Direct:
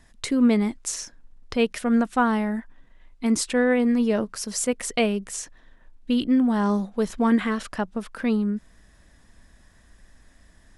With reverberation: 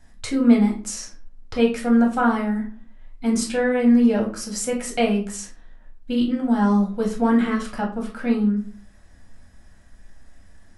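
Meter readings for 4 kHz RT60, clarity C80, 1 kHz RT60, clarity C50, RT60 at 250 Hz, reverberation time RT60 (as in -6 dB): 0.30 s, 14.0 dB, 0.40 s, 8.5 dB, 0.50 s, 0.40 s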